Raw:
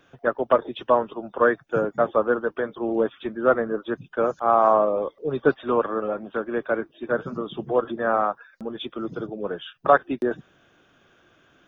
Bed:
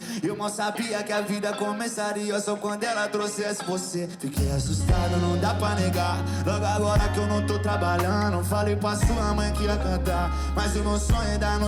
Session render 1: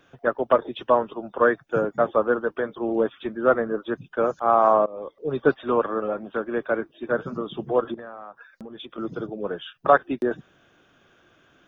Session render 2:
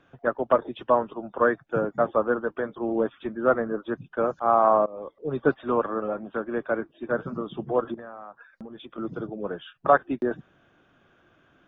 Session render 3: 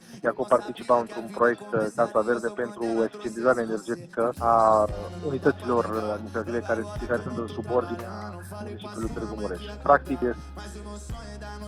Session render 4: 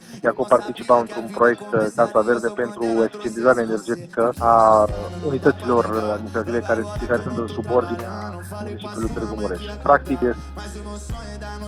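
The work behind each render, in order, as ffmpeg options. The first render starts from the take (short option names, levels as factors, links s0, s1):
-filter_complex "[0:a]asettb=1/sr,asplit=3[s0][s1][s2];[s0]atrim=end=7.944[s3];[s1]atrim=start=7.94:end=8.98,asetpts=PTS-STARTPTS,afade=t=in:d=0.004:c=qsin,afade=t=out:st=1.036:d=0.004:c=qsin,acompressor=threshold=0.0178:ratio=10:attack=3.2:release=140:knee=1:detection=peak[s4];[s2]atrim=start=8.976[s5];[s3][s4]acrossfade=d=0.004:c1=hsin:c2=qsin[s6];[s6][s5]acrossfade=d=0.004:c1=qsin:c2=hsin,asplit=2[s7][s8];[s7]atrim=end=4.86,asetpts=PTS-STARTPTS,afade=t=out:st=4.856:d=0.004:c=hsin:silence=0.0841395[s9];[s8]atrim=start=4.86,asetpts=PTS-STARTPTS,afade=t=in:d=0.46:silence=0.0841395[s10];[s9][s10]concat=n=2:v=0:a=1"
-af "lowpass=f=1700:p=1,equalizer=f=440:t=o:w=0.77:g=-3"
-filter_complex "[1:a]volume=0.2[s0];[0:a][s0]amix=inputs=2:normalize=0"
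-af "volume=2,alimiter=limit=0.794:level=0:latency=1"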